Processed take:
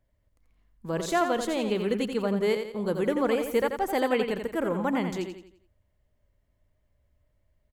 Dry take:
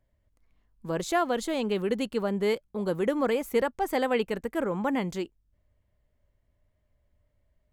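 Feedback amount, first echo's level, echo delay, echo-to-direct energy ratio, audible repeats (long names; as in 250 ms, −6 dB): 40%, −7.0 dB, 86 ms, −6.0 dB, 4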